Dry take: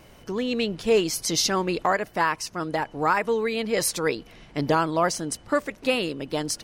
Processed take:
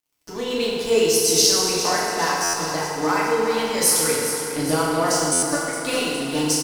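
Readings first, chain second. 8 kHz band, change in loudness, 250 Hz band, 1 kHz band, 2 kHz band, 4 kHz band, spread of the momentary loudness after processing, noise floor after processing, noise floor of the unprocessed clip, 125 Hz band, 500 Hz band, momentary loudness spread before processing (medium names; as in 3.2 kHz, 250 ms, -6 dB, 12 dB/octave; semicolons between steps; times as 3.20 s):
+11.0 dB, +5.5 dB, +3.0 dB, +2.0 dB, +2.5 dB, +7.5 dB, 8 LU, -35 dBFS, -51 dBFS, +2.0 dB, +3.5 dB, 8 LU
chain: tone controls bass +1 dB, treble +11 dB; in parallel at -2 dB: compression, threshold -34 dBFS, peak gain reduction 21 dB; on the sum: crossover distortion -34.5 dBFS; on a send: feedback delay 412 ms, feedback 59%, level -10.5 dB; on the sum: FDN reverb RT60 2.2 s, low-frequency decay 0.8×, high-frequency decay 0.7×, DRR -6.5 dB; buffer glitch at 2.43/5.32 s, samples 512, times 8; trim -6.5 dB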